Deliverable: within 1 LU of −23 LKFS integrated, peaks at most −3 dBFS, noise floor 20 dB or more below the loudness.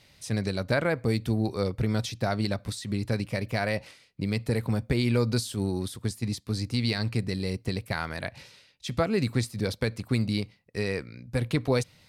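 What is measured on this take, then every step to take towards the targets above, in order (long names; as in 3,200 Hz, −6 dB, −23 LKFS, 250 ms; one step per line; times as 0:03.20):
integrated loudness −29.5 LKFS; sample peak −13.5 dBFS; target loudness −23.0 LKFS
→ level +6.5 dB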